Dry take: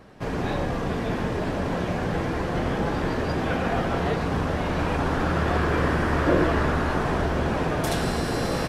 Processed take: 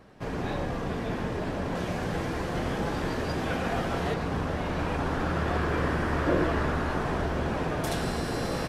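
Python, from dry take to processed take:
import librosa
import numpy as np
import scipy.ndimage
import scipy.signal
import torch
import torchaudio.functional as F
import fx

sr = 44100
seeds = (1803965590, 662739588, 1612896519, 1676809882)

y = fx.high_shelf(x, sr, hz=4100.0, db=7.0, at=(1.75, 4.14))
y = F.gain(torch.from_numpy(y), -4.5).numpy()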